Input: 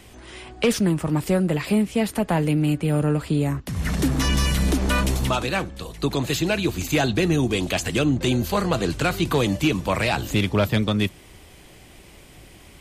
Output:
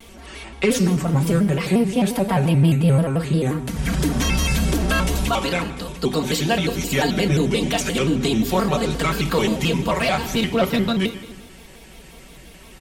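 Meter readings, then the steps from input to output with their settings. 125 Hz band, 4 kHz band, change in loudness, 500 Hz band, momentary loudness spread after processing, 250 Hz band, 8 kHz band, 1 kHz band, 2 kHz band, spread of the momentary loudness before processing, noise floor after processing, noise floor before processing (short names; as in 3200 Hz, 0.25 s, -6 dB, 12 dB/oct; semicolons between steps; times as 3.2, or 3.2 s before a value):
+2.5 dB, +2.0 dB, +2.0 dB, +2.0 dB, 6 LU, +2.0 dB, +2.5 dB, +3.0 dB, +1.5 dB, 5 LU, -44 dBFS, -47 dBFS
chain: comb 4.8 ms, depth 95%; in parallel at 0 dB: limiter -14.5 dBFS, peak gain reduction 9 dB; on the sum: FDN reverb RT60 1.2 s, low-frequency decay 1.3×, high-frequency decay 0.9×, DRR 6.5 dB; shaped vibrato square 5.7 Hz, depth 160 cents; gain -6 dB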